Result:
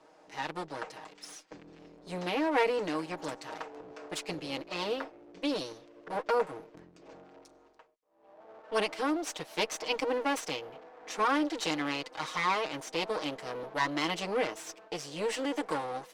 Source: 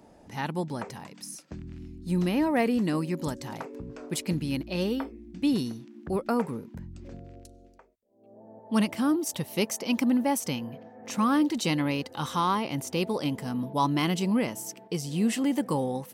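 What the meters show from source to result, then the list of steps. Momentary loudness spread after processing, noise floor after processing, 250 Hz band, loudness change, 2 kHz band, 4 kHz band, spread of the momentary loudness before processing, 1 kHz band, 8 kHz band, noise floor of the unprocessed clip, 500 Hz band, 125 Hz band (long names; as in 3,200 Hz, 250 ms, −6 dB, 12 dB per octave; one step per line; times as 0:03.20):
15 LU, −60 dBFS, −10.5 dB, −5.0 dB, +1.5 dB, −0.5 dB, 16 LU, −1.5 dB, −6.0 dB, −55 dBFS, −1.0 dB, −15.5 dB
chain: lower of the sound and its delayed copy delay 6.4 ms
three-way crossover with the lows and the highs turned down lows −20 dB, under 330 Hz, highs −18 dB, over 7,900 Hz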